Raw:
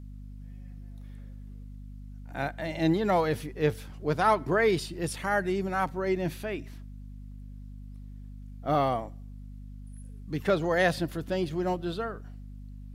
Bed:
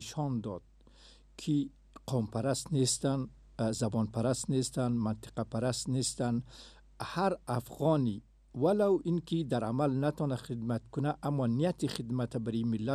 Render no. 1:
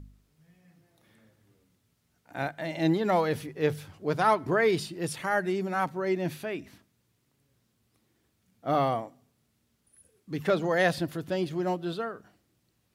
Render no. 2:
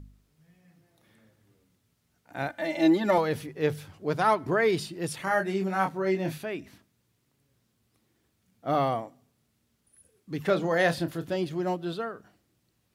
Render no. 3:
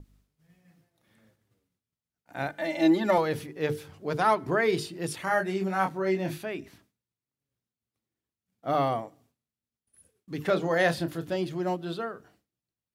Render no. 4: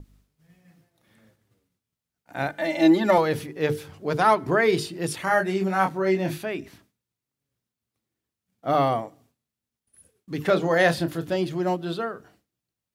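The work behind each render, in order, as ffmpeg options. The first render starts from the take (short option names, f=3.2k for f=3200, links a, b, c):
-af "bandreject=f=50:t=h:w=4,bandreject=f=100:t=h:w=4,bandreject=f=150:t=h:w=4,bandreject=f=200:t=h:w=4,bandreject=f=250:t=h:w=4"
-filter_complex "[0:a]asettb=1/sr,asplit=3[a][b][c];[a]atrim=end=2.494[d];[b]atrim=start=2.49:end=3.18,asetpts=PTS-STARTPTS,afade=t=in:d=0.004:c=qsin,afade=t=out:st=0.686:d=0.004:c=qsin,aecho=1:1:3.4:0.94,atrim=end_sample=30429[e];[c]atrim=start=3.176[f];[d][e]acrossfade=d=0.004:c1=hsin:c2=qsin[g];[g][f]acrossfade=d=0.004:c1=qsin:c2=hsin,asettb=1/sr,asplit=3[h][i][j];[h]atrim=end=5.244[k];[i]atrim=start=5.24:end=6.38,asetpts=PTS-STARTPTS,afade=t=in:d=0.004:c=qsin,afade=t=out:st=1.136:d=0.004:c=qsin,asplit=2[l][m];[m]adelay=26,volume=-5dB[n];[l][n]amix=inputs=2:normalize=0,atrim=end_sample=50274[o];[j]atrim=start=6.376[p];[k][o]acrossfade=d=0.004:c1=hsin:c2=qsin[q];[q][p]acrossfade=d=0.004:c1=qsin:c2=hsin,asettb=1/sr,asplit=3[r][s][t];[r]atrim=end=10.424[u];[s]atrim=start=10.42:end=11.36,asetpts=PTS-STARTPTS,afade=t=in:d=0.004:c=qsin,afade=t=out:st=0.936:d=0.004:c=qsin,asplit=2[v][w];[w]adelay=30,volume=-10.5dB[x];[v][x]amix=inputs=2:normalize=0,atrim=end_sample=41454[y];[t]atrim=start=11.356[z];[u][y]acrossfade=d=0.004:c1=hsin:c2=qsin[aa];[aa][z]acrossfade=d=0.004:c1=qsin:c2=hsin"
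-af "bandreject=f=50:t=h:w=6,bandreject=f=100:t=h:w=6,bandreject=f=150:t=h:w=6,bandreject=f=200:t=h:w=6,bandreject=f=250:t=h:w=6,bandreject=f=300:t=h:w=6,bandreject=f=350:t=h:w=6,bandreject=f=400:t=h:w=6,bandreject=f=450:t=h:w=6,agate=range=-33dB:threshold=-59dB:ratio=3:detection=peak"
-af "volume=4.5dB"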